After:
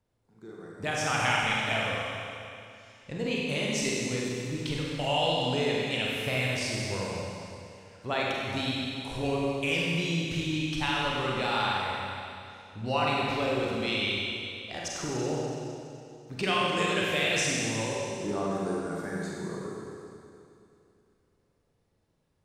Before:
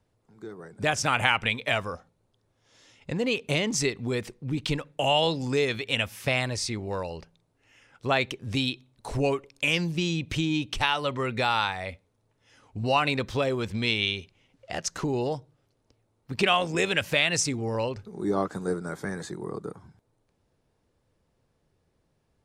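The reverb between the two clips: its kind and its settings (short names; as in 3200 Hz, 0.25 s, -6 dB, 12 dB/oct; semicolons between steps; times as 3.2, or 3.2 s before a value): Schroeder reverb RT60 2.6 s, combs from 32 ms, DRR -4.5 dB; gain -7.5 dB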